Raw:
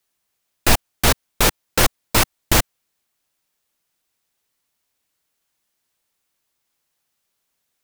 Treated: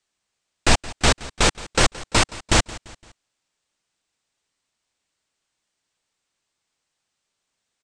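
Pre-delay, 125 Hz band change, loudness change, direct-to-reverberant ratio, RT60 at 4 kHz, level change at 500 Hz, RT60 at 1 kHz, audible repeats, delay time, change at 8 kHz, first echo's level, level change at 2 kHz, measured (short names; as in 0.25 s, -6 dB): none, -1.0 dB, -2.0 dB, none, none, -1.0 dB, none, 3, 0.171 s, -2.0 dB, -19.0 dB, -0.5 dB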